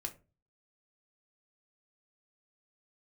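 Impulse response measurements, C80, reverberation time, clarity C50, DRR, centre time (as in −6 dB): 22.0 dB, 0.30 s, 16.0 dB, 2.5 dB, 8 ms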